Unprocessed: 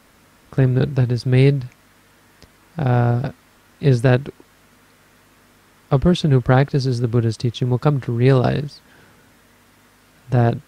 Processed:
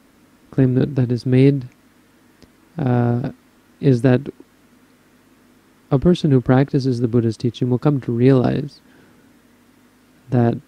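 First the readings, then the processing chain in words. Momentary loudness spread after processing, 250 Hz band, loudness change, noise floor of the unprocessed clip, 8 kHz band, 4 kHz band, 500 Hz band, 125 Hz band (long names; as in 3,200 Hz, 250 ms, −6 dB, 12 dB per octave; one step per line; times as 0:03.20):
11 LU, +4.0 dB, +0.5 dB, −54 dBFS, can't be measured, −4.0 dB, +1.0 dB, −2.0 dB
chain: parametric band 280 Hz +10.5 dB 1.1 octaves
level −4 dB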